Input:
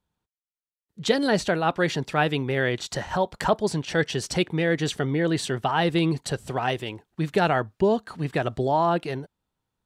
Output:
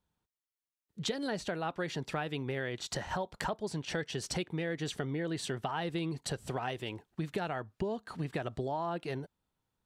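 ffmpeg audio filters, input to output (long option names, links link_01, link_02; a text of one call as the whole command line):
ffmpeg -i in.wav -af "acompressor=threshold=-30dB:ratio=6,volume=-2.5dB" out.wav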